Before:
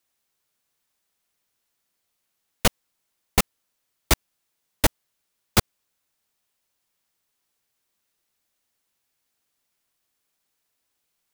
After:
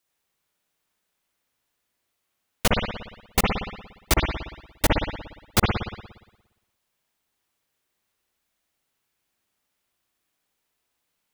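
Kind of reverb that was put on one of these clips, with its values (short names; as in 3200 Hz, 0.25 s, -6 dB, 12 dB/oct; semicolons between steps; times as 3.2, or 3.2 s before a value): spring tank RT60 1 s, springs 58 ms, chirp 40 ms, DRR -2 dB; gain -2 dB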